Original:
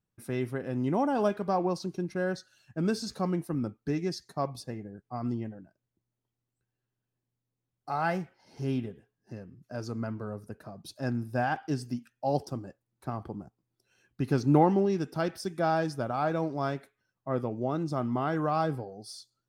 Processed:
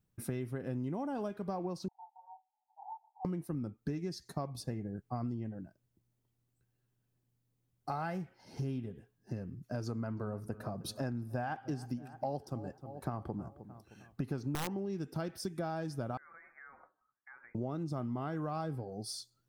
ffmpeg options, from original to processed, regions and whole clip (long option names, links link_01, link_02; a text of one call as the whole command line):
ffmpeg -i in.wav -filter_complex "[0:a]asettb=1/sr,asplit=3[link_01][link_02][link_03];[link_01]atrim=end=1.884[link_04];[link_02]atrim=start=1.88:end=3.25,asetpts=PTS-STARTPTS,afade=type=in:duration=0.004:curve=qsin,afade=type=out:start_time=1.366:duration=0.004:curve=qsin,asoftclip=type=hard:threshold=-29dB,asuperpass=centerf=830:order=8:qfactor=4.6,asplit=2[link_05][link_06];[link_06]adelay=28,volume=-3.5dB[link_07];[link_05][link_07]amix=inputs=2:normalize=0,atrim=end_sample=60417[link_08];[link_03]atrim=start=3.246[link_09];[link_04][link_08]acrossfade=duration=0.004:curve1=hsin:curve2=qsin[link_10];[link_10][link_09]acrossfade=duration=0.004:curve1=qsin:curve2=hsin,asettb=1/sr,asplit=3[link_11][link_12][link_13];[link_11]atrim=end=9.864[link_14];[link_12]atrim=start=9.86:end=14.77,asetpts=PTS-STARTPTS,afade=type=in:duration=0.004:curve=qsin,afade=type=out:start_time=4.906:duration=0.004:curve=qsin,equalizer=frequency=930:width=0.54:gain=5,aeval=exprs='(mod(3.55*val(0)+1,2)-1)/3.55':channel_layout=same,asplit=2[link_15][link_16];[link_16]adelay=309,lowpass=frequency=2000:poles=1,volume=-20dB,asplit=2[link_17][link_18];[link_18]adelay=309,lowpass=frequency=2000:poles=1,volume=0.49,asplit=2[link_19][link_20];[link_20]adelay=309,lowpass=frequency=2000:poles=1,volume=0.49,asplit=2[link_21][link_22];[link_22]adelay=309,lowpass=frequency=2000:poles=1,volume=0.49[link_23];[link_15][link_17][link_19][link_21][link_23]amix=inputs=5:normalize=0,atrim=end_sample=216531[link_24];[link_13]atrim=start=14.766[link_25];[link_14][link_24]acrossfade=duration=0.004:curve1=hsin:curve2=qsin[link_26];[link_26][link_25]acrossfade=duration=0.004:curve1=qsin:curve2=hsin,asettb=1/sr,asplit=3[link_27][link_28][link_29];[link_27]atrim=end=16.174[link_30];[link_28]atrim=start=16.17:end=17.55,asetpts=PTS-STARTPTS,afade=type=in:duration=0.004:curve=qsin,afade=type=out:start_time=1.376:duration=0.004:curve=qsin,highpass=frequency=1300:width=0.5412,highpass=frequency=1300:width=1.3066,acompressor=threshold=-52dB:ratio=6:attack=3.2:release=140:knee=1:detection=peak,lowpass=frequency=2400:width_type=q:width=0.5098,lowpass=frequency=2400:width_type=q:width=0.6013,lowpass=frequency=2400:width_type=q:width=0.9,lowpass=frequency=2400:width_type=q:width=2.563,afreqshift=-2800[link_31];[link_29]atrim=start=17.546[link_32];[link_30][link_31]acrossfade=duration=0.004:curve1=hsin:curve2=qsin[link_33];[link_33][link_32]acrossfade=duration=0.004:curve1=qsin:curve2=hsin,lowshelf=frequency=270:gain=7.5,acompressor=threshold=-35dB:ratio=10,highshelf=frequency=9800:gain=6,volume=1dB" out.wav